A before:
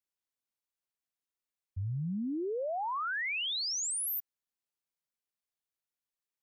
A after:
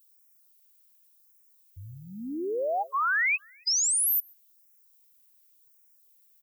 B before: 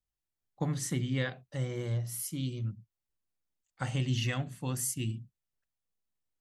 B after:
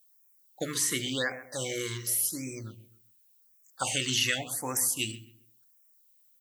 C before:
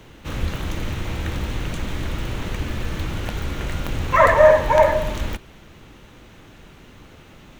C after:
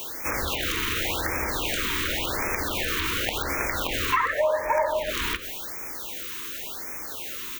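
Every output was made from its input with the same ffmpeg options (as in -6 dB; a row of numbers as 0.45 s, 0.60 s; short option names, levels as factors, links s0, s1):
-filter_complex "[0:a]aemphasis=mode=production:type=riaa,acrossover=split=3600[s0][s1];[s1]acompressor=threshold=0.02:ratio=4:attack=1:release=60[s2];[s0][s2]amix=inputs=2:normalize=0,equalizer=f=160:w=1.6:g=-10.5,acompressor=threshold=0.0282:ratio=5,asplit=2[s3][s4];[s4]adelay=134,lowpass=f=1900:p=1,volume=0.211,asplit=2[s5][s6];[s6]adelay=134,lowpass=f=1900:p=1,volume=0.31,asplit=2[s7][s8];[s8]adelay=134,lowpass=f=1900:p=1,volume=0.31[s9];[s5][s7][s9]amix=inputs=3:normalize=0[s10];[s3][s10]amix=inputs=2:normalize=0,afftfilt=real='re*(1-between(b*sr/1024,630*pow(3700/630,0.5+0.5*sin(2*PI*0.9*pts/sr))/1.41,630*pow(3700/630,0.5+0.5*sin(2*PI*0.9*pts/sr))*1.41))':imag='im*(1-between(b*sr/1024,630*pow(3700/630,0.5+0.5*sin(2*PI*0.9*pts/sr))/1.41,630*pow(3700/630,0.5+0.5*sin(2*PI*0.9*pts/sr))*1.41))':win_size=1024:overlap=0.75,volume=2.66"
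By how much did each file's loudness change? +8.0 LU, +5.0 LU, -5.5 LU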